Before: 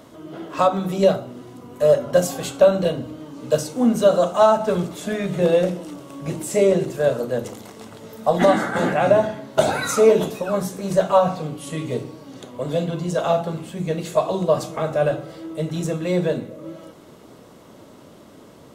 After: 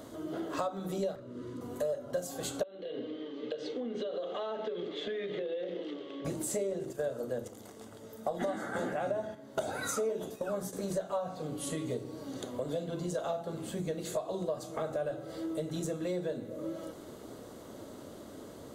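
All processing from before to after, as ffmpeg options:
-filter_complex "[0:a]asettb=1/sr,asplit=3[a][b][c];[a]atrim=end=1.154[d];[b]atrim=start=1.15:end=1.61,asetpts=PTS-STARTPTS,afade=t=in:d=0.004:c=qsin,afade=t=out:st=0.456:d=0.004:c=qsin,aemphasis=mode=reproduction:type=50fm,volume=27.5dB,asoftclip=hard,volume=-27.5dB,asuperstop=centerf=750:order=4:qfactor=2.6[e];[c]atrim=start=1.606[f];[d][e]acrossfade=d=0.004:c1=hsin:c2=qsin[g];[g][f]acrossfade=d=0.004:c1=qsin:c2=hsin,asettb=1/sr,asplit=3[h][i][j];[h]atrim=end=2.634[k];[i]atrim=start=2.63:end=6.25,asetpts=PTS-STARTPTS,afade=t=in:d=0.004:c=qsin,afade=t=out:st=3.616:d=0.004:c=qsin,highpass=360,equalizer=f=430:t=q:w=4:g=7,equalizer=f=650:t=q:w=4:g=-8,equalizer=f=930:t=q:w=4:g=-9,equalizer=f=1.4k:t=q:w=4:g=-8,equalizer=f=2k:t=q:w=4:g=5,equalizer=f=3.2k:t=q:w=4:g=8,lowpass=f=3.7k:w=0.5412,lowpass=f=3.7k:w=1.3066,acompressor=threshold=-29dB:ratio=6:attack=3.2:release=140:knee=1:detection=peak[l];[j]atrim=start=6.246[m];[k][l]acrossfade=d=0.004:c1=hsin:c2=qsin[n];[n][m]acrossfade=d=0.004:c1=qsin:c2=hsin,asettb=1/sr,asplit=3[o][p][q];[o]atrim=end=6.794[r];[p]atrim=start=6.79:end=10.73,asetpts=PTS-STARTPTS,afade=t=in:d=0.004:c=qsin,afade=t=out:st=3.936:d=0.004:c=qsin,agate=range=-8dB:threshold=-32dB:ratio=16:release=100:detection=peak,bandreject=f=4.1k:w=12[s];[q]atrim=start=10.726[t];[r][s]acrossfade=d=0.004:c1=hsin:c2=qsin[u];[u][t]acrossfade=d=0.004:c1=qsin:c2=hsin,equalizer=f=160:t=o:w=0.67:g=-7,equalizer=f=1k:t=o:w=0.67:g=-5,equalizer=f=2.5k:t=o:w=0.67:g=-8,acompressor=threshold=-33dB:ratio=5,bandreject=f=5.4k:w=13"

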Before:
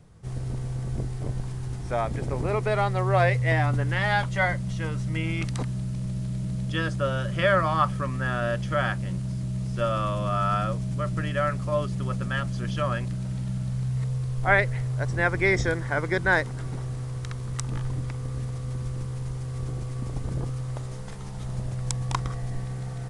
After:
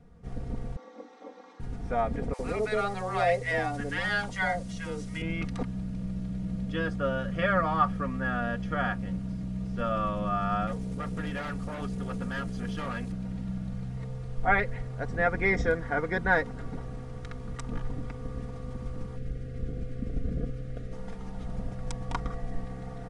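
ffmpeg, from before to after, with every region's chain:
-filter_complex "[0:a]asettb=1/sr,asplit=3[a][b][c];[a]atrim=end=0.764[d];[b]atrim=start=0.76:end=1.6,asetpts=PTS-STARTPTS,afade=t=in:d=0.004:c=qsin,afade=t=out:st=0.836:d=0.004:c=qsin,highpass=f=400:w=0.5412,highpass=f=400:w=1.3066,equalizer=f=420:t=q:w=4:g=-6,equalizer=f=660:t=q:w=4:g=-8,equalizer=f=1k:t=q:w=4:g=3,equalizer=f=1.7k:t=q:w=4:g=-7,equalizer=f=2.8k:t=q:w=4:g=-5,equalizer=f=4.5k:t=q:w=4:g=-6,lowpass=f=5.6k:w=0.5412,lowpass=f=5.6k:w=1.3066,bandreject=f=2.3k:w=11,aecho=1:1:3.7:0.82,atrim=end_sample=37044[e];[c]atrim=start=1.596[f];[d][e]acrossfade=d=0.004:c1=hsin:c2=qsin[g];[g][f]acrossfade=d=0.004:c1=qsin:c2=hsin,asettb=1/sr,asplit=3[h][i][j];[h]atrim=end=2.334[k];[i]atrim=start=2.33:end=5.22,asetpts=PTS-STARTPTS,afade=t=in:d=0.004:c=qsin,afade=t=out:st=2.886:d=0.004:c=qsin,bass=f=250:g=-5,treble=f=4k:g=13,acrossover=split=840[l][m];[l]adelay=60[n];[n][m]amix=inputs=2:normalize=0,atrim=end_sample=127449[o];[j]atrim=start=5.216[p];[k][o]acrossfade=d=0.004:c1=hsin:c2=qsin[q];[q][p]acrossfade=d=0.004:c1=qsin:c2=hsin,asettb=1/sr,asplit=3[r][s][t];[r]atrim=end=10.674[u];[s]atrim=start=10.67:end=13.12,asetpts=PTS-STARTPTS,afade=t=in:d=0.004:c=qsin,afade=t=out:st=2.446:d=0.004:c=qsin,aemphasis=mode=production:type=50kf,volume=26.5dB,asoftclip=hard,volume=-26.5dB[v];[t]atrim=start=13.116[w];[u][v]acrossfade=d=0.004:c1=hsin:c2=qsin[x];[x][w]acrossfade=d=0.004:c1=qsin:c2=hsin,asettb=1/sr,asplit=3[y][z][aa];[y]atrim=end=19.164[ab];[z]atrim=start=19.16:end=20.93,asetpts=PTS-STARTPTS,afade=t=in:d=0.004:c=qsin,afade=t=out:st=1.766:d=0.004:c=qsin,asuperstop=centerf=950:order=4:qfactor=1.2,bass=f=250:g=2,treble=f=4k:g=-5[ac];[aa]atrim=start=20.926[ad];[ab][ac]acrossfade=d=0.004:c1=hsin:c2=qsin[ae];[ae][ad]acrossfade=d=0.004:c1=qsin:c2=hsin,lowpass=f=1.5k:p=1,bandreject=f=1k:w=12,aecho=1:1:4.2:0.7,volume=-1.5dB"

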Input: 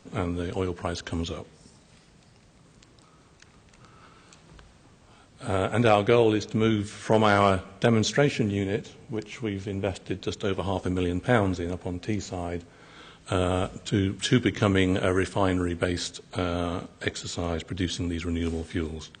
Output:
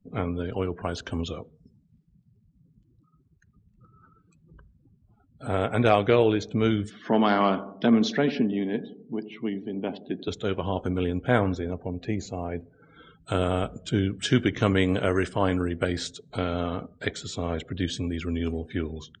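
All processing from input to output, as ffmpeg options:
-filter_complex "[0:a]asettb=1/sr,asplit=3[a][b][c];[a]atrim=end=6.904[d];[b]atrim=start=6.9:end=10.28,asetpts=PTS-STARTPTS,afade=t=in:d=0.004:c=qsin,afade=t=out:st=3.376:d=0.004:c=qsin,highpass=f=170:w=0.5412,highpass=f=170:w=1.3066,equalizer=f=240:t=q:w=4:g=7,equalizer=f=520:t=q:w=4:g=-7,equalizer=f=1.4k:t=q:w=4:g=-4,equalizer=f=2.4k:t=q:w=4:g=-5,lowpass=f=5.4k:w=0.5412,lowpass=f=5.4k:w=1.3066,asplit=2[e][f];[f]adelay=86,lowpass=f=1.9k:p=1,volume=-14dB,asplit=2[g][h];[h]adelay=86,lowpass=f=1.9k:p=1,volume=0.54,asplit=2[i][j];[j]adelay=86,lowpass=f=1.9k:p=1,volume=0.54,asplit=2[k][l];[l]adelay=86,lowpass=f=1.9k:p=1,volume=0.54,asplit=2[m][n];[n]adelay=86,lowpass=f=1.9k:p=1,volume=0.54[o];[e][g][i][k][m][o]amix=inputs=6:normalize=0,atrim=end_sample=149058[p];[c]atrim=start=10.276[q];[d][p]acrossfade=d=0.004:c1=hsin:c2=qsin[r];[r][q]acrossfade=d=0.004:c1=qsin:c2=hsin,afftdn=nr=35:nf=-45,highshelf=f=7.6k:g=-5"

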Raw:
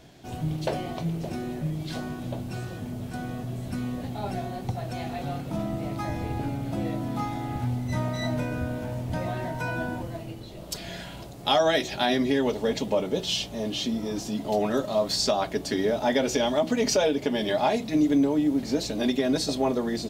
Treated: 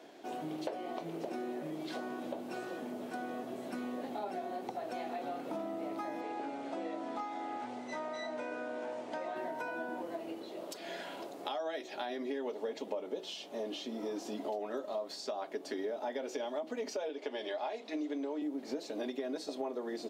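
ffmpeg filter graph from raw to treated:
-filter_complex "[0:a]asettb=1/sr,asplit=3[a][b][c];[a]atrim=end=6.214[d];[b]atrim=start=6.21:end=9.36,asetpts=PTS-STARTPTS,afade=t=in:d=0.004:c=qsin,afade=t=out:st=3.146:d=0.004:c=qsin,lowpass=f=8.5k:w=0.5412,lowpass=f=8.5k:w=1.3066,equalizer=f=110:w=0.37:g=-9[e];[c]atrim=start=9.356[f];[d][e]acrossfade=d=0.004:c1=hsin:c2=qsin[g];[g][f]acrossfade=d=0.004:c1=qsin:c2=hsin,asettb=1/sr,asplit=3[h][i][j];[h]atrim=end=17.094[k];[i]atrim=start=17.09:end=18.42,asetpts=PTS-STARTPTS,afade=t=in:d=0.004:c=qsin,afade=t=out:st=1.326:d=0.004:c=qsin,highpass=310,lowpass=4k,aemphasis=mode=production:type=75kf[l];[j]atrim=start=18.416[m];[k][l]acrossfade=d=0.004:c1=hsin:c2=qsin[n];[n][m]acrossfade=d=0.004:c1=qsin:c2=hsin,highpass=f=300:w=0.5412,highpass=f=300:w=1.3066,acompressor=threshold=-37dB:ratio=6,highshelf=f=2.4k:g=-10.5,volume=2dB"

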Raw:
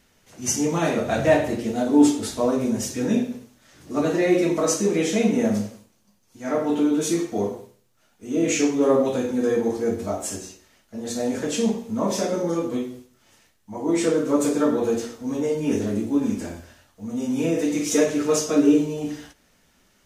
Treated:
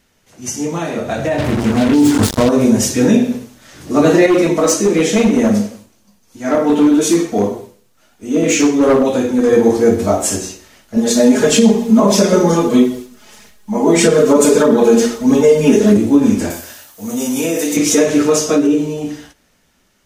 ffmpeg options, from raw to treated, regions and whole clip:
-filter_complex "[0:a]asettb=1/sr,asplit=3[a][b][c];[a]atrim=end=1.384[d];[b]atrim=start=1.38:end=2.49,asetpts=PTS-STARTPTS,afade=t=in:d=0.004:c=qsin,afade=t=out:st=1.106:d=0.004:c=qsin,bass=f=250:g=12,treble=f=4k:g=-1,acrusher=bits=3:mix=0:aa=0.5[e];[c]atrim=start=2.486[f];[d][e]acrossfade=d=0.004:c1=hsin:c2=qsin[g];[g][f]acrossfade=d=0.004:c1=qsin:c2=hsin,asettb=1/sr,asplit=3[h][i][j];[h]atrim=end=4.264[k];[i]atrim=start=4.26:end=9.53,asetpts=PTS-STARTPTS,afade=t=in:d=0.004:c=qsin,afade=t=out:st=5.266:d=0.004:c=qsin,flanger=delay=2.7:depth=2:regen=-51:speed=1.8:shape=triangular,asoftclip=type=hard:threshold=-19.5dB[l];[j]atrim=start=9.526[m];[k][l]acrossfade=d=0.004:c1=hsin:c2=qsin[n];[n][m]acrossfade=d=0.004:c1=qsin:c2=hsin,asettb=1/sr,asplit=3[o][p][q];[o]atrim=end=10.964[r];[p]atrim=start=10.96:end=15.97,asetpts=PTS-STARTPTS,afade=t=in:d=0.004:c=qsin,afade=t=out:st=5.006:d=0.004:c=qsin,aecho=1:1:4.8:0.91,atrim=end_sample=220941,aphaser=in_gain=1:out_gain=1:delay=4.4:decay=0.33:speed=1.6:type=triangular[s];[q]atrim=start=15.966[t];[r][s]acrossfade=d=0.004:c1=hsin:c2=qsin[u];[u][t]acrossfade=d=0.004:c1=qsin:c2=hsin,asettb=1/sr,asplit=3[v][w][x];[v]atrim=end=16.504[y];[w]atrim=start=16.5:end=17.77,asetpts=PTS-STARTPTS,afade=t=in:d=0.004:c=qsin,afade=t=out:st=1.266:d=0.004:c=qsin,aemphasis=mode=production:type=bsi,acompressor=threshold=-28dB:ratio=2.5:attack=3.2:release=140:knee=1:detection=peak[z];[x]atrim=start=17.766[aa];[y][z]acrossfade=d=0.004:c1=hsin:c2=qsin[ab];[ab][aa]acrossfade=d=0.004:c1=qsin:c2=hsin,alimiter=limit=-14dB:level=0:latency=1:release=117,dynaudnorm=f=280:g=13:m=12dB,volume=2dB"

